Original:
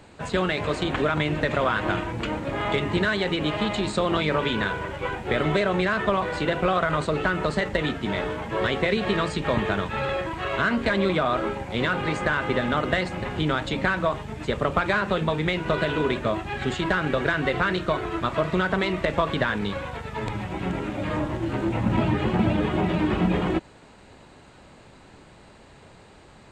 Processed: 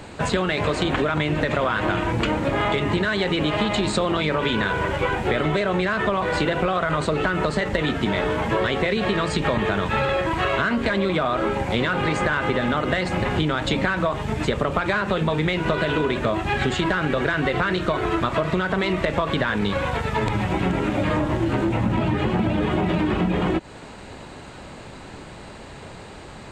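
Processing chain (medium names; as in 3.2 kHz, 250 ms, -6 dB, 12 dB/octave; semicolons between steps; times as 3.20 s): in parallel at -0.5 dB: peak limiter -18 dBFS, peak gain reduction 8.5 dB; on the sum: compression, threshold -23 dBFS, peak gain reduction 9.5 dB; trim +4.5 dB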